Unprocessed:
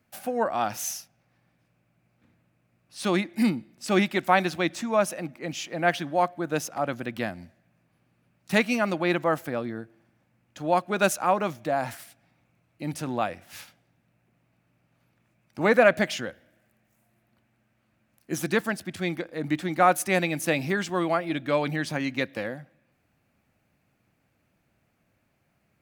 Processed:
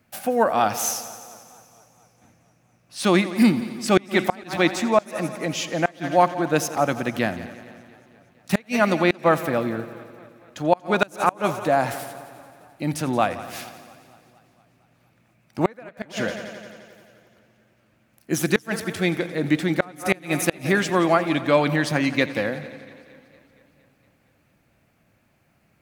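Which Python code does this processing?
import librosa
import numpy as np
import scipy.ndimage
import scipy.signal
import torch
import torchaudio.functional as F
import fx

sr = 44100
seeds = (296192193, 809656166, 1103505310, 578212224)

y = fx.echo_heads(x, sr, ms=87, heads='first and second', feedback_pct=63, wet_db=-18.5)
y = fx.gate_flip(y, sr, shuts_db=-11.0, range_db=-31)
y = fx.echo_warbled(y, sr, ms=231, feedback_pct=66, rate_hz=2.8, cents=109, wet_db=-24)
y = y * librosa.db_to_amplitude(6.5)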